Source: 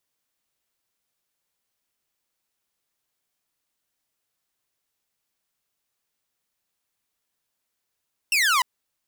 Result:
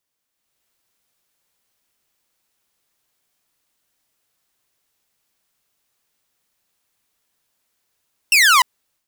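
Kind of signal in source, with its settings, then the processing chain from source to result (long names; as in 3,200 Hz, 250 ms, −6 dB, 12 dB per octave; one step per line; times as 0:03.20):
single falling chirp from 2,800 Hz, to 950 Hz, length 0.30 s saw, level −15 dB
automatic gain control gain up to 8 dB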